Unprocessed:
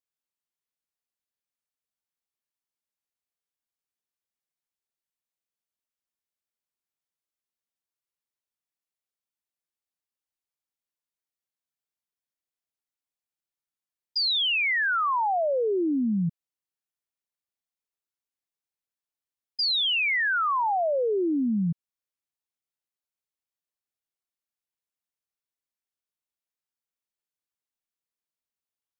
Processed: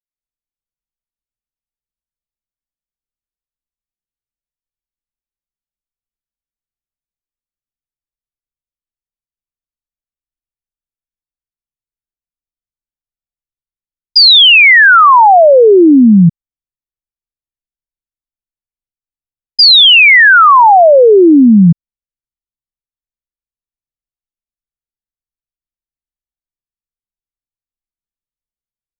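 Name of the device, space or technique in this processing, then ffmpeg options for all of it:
voice memo with heavy noise removal: -af "anlmdn=0.0251,dynaudnorm=f=130:g=3:m=4.73,volume=2.24"

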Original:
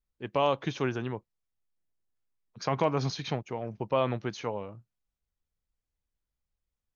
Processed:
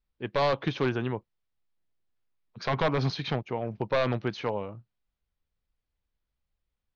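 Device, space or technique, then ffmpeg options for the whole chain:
synthesiser wavefolder: -af "aeval=exprs='0.0891*(abs(mod(val(0)/0.0891+3,4)-2)-1)':c=same,lowpass=f=4600:w=0.5412,lowpass=f=4600:w=1.3066,volume=1.5"

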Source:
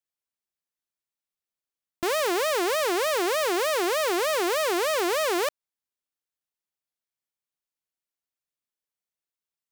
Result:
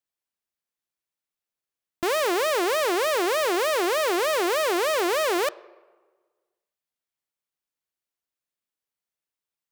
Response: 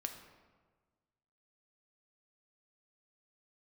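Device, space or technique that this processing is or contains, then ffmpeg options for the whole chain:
filtered reverb send: -filter_complex "[0:a]asplit=2[s0][s1];[s1]highpass=f=170:p=1,lowpass=4600[s2];[1:a]atrim=start_sample=2205[s3];[s2][s3]afir=irnorm=-1:irlink=0,volume=0.299[s4];[s0][s4]amix=inputs=2:normalize=0"

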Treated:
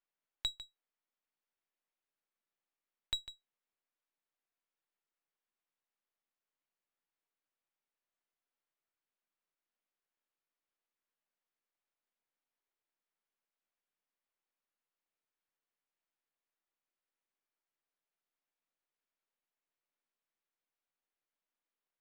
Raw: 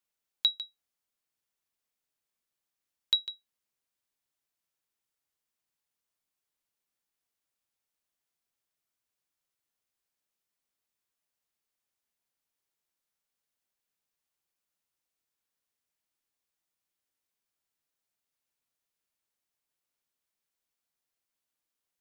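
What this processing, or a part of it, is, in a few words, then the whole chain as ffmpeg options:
crystal radio: -af "highpass=240,lowpass=2600,aeval=exprs='if(lt(val(0),0),0.447*val(0),val(0))':c=same"

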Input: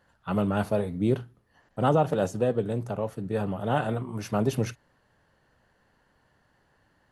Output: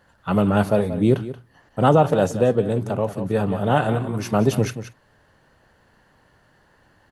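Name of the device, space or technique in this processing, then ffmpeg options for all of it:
ducked delay: -filter_complex "[0:a]asplit=3[s0][s1][s2];[s1]adelay=180,volume=0.631[s3];[s2]apad=whole_len=321692[s4];[s3][s4]sidechaincompress=threshold=0.0316:ratio=8:attack=7.2:release=647[s5];[s0][s5]amix=inputs=2:normalize=0,volume=2.24"

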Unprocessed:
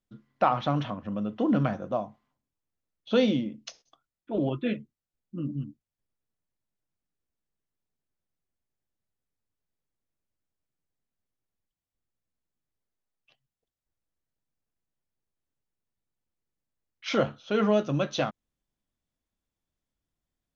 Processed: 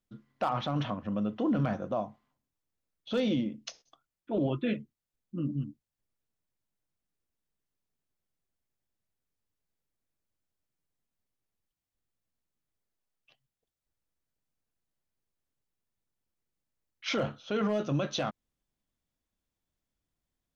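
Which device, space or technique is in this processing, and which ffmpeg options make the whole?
clipper into limiter: -af "asoftclip=type=hard:threshold=0.188,alimiter=limit=0.0841:level=0:latency=1:release=13"

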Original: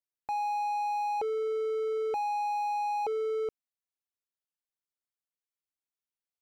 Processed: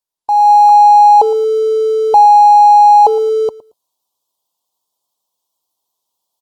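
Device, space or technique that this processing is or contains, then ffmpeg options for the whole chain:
video call: -af "firequalizer=gain_entry='entry(210,0);entry(370,2);entry(1000,14);entry(1600,-29);entry(3300,5)':delay=0.05:min_phase=1,aecho=1:1:113|226:0.1|0.017,adynamicequalizer=threshold=0.00355:dfrequency=280:dqfactor=4.1:tfrequency=280:tqfactor=4.1:attack=5:release=100:ratio=0.375:range=2:mode=cutabove:tftype=bell,highpass=f=110:p=1,dynaudnorm=f=250:g=3:m=4.47,volume=1.41" -ar 48000 -c:a libopus -b:a 24k

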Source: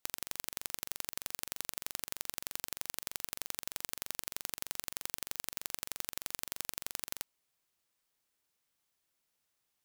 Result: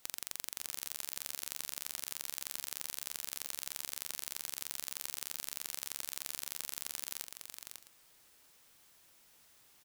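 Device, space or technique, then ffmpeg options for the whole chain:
saturation between pre-emphasis and de-emphasis: -af "highshelf=f=5900:g=11.5,asoftclip=type=tanh:threshold=0.0794,highshelf=f=5900:g=-11.5,aecho=1:1:547|659:0.473|0.126,volume=6.68"

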